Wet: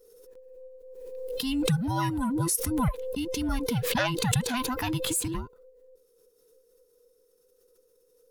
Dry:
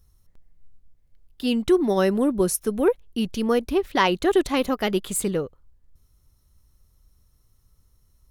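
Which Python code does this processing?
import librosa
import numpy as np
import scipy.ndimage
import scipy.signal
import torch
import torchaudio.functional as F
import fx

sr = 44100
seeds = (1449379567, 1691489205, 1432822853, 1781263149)

y = fx.band_invert(x, sr, width_hz=500)
y = fx.high_shelf(y, sr, hz=4200.0, db=6.5)
y = fx.pre_swell(y, sr, db_per_s=29.0)
y = F.gain(torch.from_numpy(y), -8.0).numpy()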